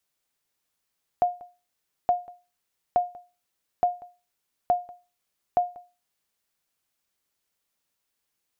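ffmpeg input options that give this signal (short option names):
-f lavfi -i "aevalsrc='0.211*(sin(2*PI*712*mod(t,0.87))*exp(-6.91*mod(t,0.87)/0.3)+0.075*sin(2*PI*712*max(mod(t,0.87)-0.19,0))*exp(-6.91*max(mod(t,0.87)-0.19,0)/0.3))':d=5.22:s=44100"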